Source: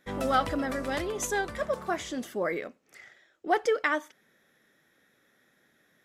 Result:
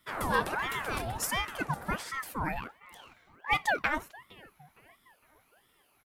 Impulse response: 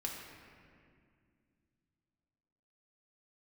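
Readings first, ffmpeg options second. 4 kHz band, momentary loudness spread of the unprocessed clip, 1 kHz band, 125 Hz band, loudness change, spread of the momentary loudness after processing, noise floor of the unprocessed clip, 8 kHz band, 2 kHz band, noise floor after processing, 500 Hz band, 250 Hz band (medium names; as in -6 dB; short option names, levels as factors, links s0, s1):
+1.5 dB, 8 LU, -1.5 dB, +3.0 dB, -2.0 dB, 18 LU, -68 dBFS, -1.5 dB, +1.0 dB, -69 dBFS, -9.0 dB, -6.0 dB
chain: -filter_complex "[0:a]aexciter=amount=3.8:drive=3.7:freq=9100,asplit=2[s0][s1];[s1]adelay=461,lowpass=f=1900:p=1,volume=0.0794,asplit=2[s2][s3];[s3]adelay=461,lowpass=f=1900:p=1,volume=0.54,asplit=2[s4][s5];[s5]adelay=461,lowpass=f=1900:p=1,volume=0.54,asplit=2[s6][s7];[s7]adelay=461,lowpass=f=1900:p=1,volume=0.54[s8];[s0][s2][s4][s6][s8]amix=inputs=5:normalize=0,aeval=exprs='val(0)*sin(2*PI*960*n/s+960*0.7/1.4*sin(2*PI*1.4*n/s))':c=same"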